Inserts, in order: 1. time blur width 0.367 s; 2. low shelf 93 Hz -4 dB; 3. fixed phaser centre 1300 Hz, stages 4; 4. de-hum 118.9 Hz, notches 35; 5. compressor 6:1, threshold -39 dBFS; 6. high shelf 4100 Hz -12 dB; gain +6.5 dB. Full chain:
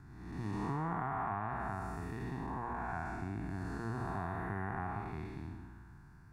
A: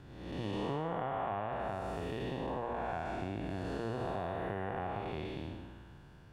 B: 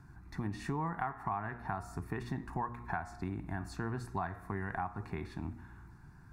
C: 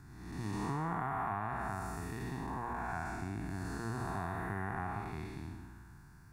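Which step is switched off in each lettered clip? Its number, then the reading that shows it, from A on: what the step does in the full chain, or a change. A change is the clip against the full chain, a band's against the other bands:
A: 3, 4 kHz band +12.0 dB; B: 1, 8 kHz band +5.0 dB; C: 6, 8 kHz band +9.0 dB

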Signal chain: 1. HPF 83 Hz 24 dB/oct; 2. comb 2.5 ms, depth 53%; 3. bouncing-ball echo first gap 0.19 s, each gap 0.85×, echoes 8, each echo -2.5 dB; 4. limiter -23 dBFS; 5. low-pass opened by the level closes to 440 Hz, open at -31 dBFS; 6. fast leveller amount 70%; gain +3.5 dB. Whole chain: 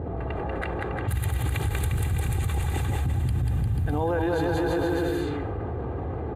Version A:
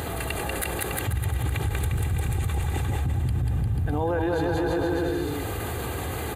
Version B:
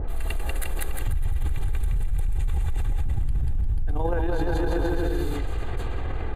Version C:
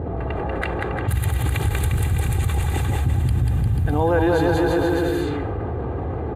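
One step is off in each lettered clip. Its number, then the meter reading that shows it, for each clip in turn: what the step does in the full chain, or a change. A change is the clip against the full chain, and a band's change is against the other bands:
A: 5, 8 kHz band +6.0 dB; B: 1, 8 kHz band +2.0 dB; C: 4, momentary loudness spread change +2 LU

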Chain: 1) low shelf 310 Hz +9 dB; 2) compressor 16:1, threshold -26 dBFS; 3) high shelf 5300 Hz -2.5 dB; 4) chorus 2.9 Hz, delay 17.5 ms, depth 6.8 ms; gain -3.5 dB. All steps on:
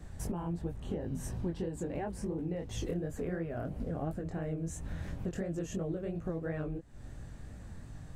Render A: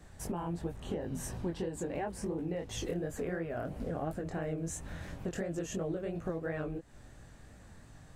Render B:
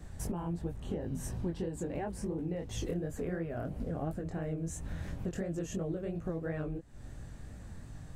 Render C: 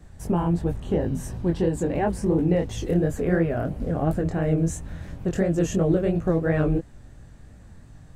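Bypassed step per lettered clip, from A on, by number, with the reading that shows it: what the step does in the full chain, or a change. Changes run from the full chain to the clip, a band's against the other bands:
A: 1, 125 Hz band -6.0 dB; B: 3, 8 kHz band +1.5 dB; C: 2, mean gain reduction 9.5 dB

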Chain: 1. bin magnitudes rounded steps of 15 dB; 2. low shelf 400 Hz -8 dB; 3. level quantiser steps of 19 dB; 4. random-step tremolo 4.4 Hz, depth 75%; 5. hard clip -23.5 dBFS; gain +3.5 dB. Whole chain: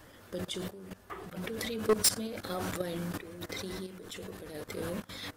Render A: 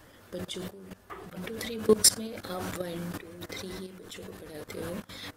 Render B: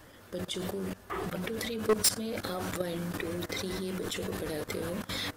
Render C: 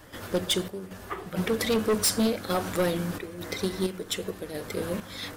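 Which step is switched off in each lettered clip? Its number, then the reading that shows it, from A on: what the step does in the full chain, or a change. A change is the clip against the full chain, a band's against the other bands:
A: 5, distortion -7 dB; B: 4, momentary loudness spread change -7 LU; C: 3, crest factor change -7.0 dB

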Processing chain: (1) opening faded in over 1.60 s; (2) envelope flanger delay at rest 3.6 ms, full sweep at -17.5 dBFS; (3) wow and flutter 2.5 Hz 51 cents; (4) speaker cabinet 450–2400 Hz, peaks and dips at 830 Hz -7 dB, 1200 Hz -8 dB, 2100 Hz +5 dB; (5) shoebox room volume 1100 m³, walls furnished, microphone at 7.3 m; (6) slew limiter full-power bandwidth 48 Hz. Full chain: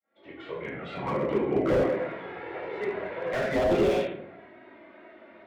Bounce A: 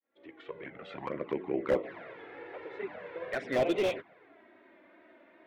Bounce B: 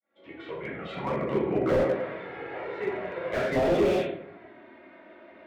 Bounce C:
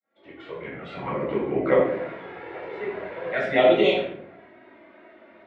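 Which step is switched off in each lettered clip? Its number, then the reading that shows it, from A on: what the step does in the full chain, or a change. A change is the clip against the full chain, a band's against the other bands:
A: 5, momentary loudness spread change +3 LU; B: 3, momentary loudness spread change +2 LU; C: 6, crest factor change +2.5 dB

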